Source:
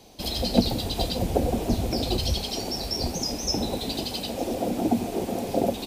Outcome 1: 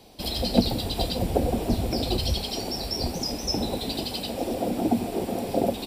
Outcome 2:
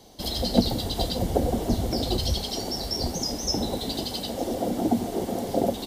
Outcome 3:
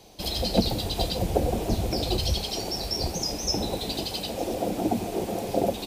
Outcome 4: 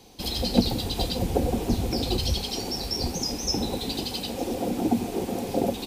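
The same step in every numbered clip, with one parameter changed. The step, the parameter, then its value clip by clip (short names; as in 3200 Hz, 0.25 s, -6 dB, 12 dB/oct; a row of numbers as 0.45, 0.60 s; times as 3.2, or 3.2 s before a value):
notch, frequency: 6400, 2500, 250, 630 Hz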